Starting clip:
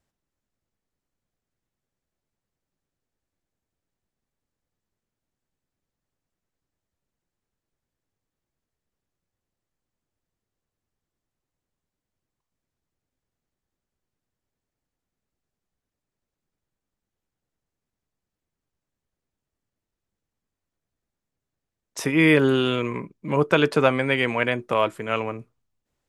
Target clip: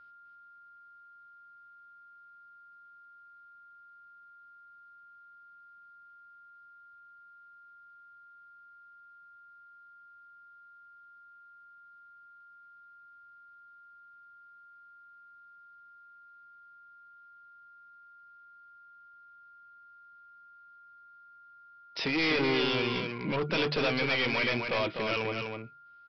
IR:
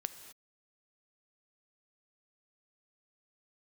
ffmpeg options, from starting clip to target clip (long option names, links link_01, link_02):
-af "highpass=52,highshelf=frequency=1900:width_type=q:width=1.5:gain=7,bandreject=frequency=74.05:width_type=h:width=4,bandreject=frequency=148.1:width_type=h:width=4,aresample=11025,asoftclip=type=tanh:threshold=-24.5dB,aresample=44100,aecho=1:1:250:0.562,aeval=exprs='val(0)+0.00282*sin(2*PI*1400*n/s)':channel_layout=same,volume=-1.5dB"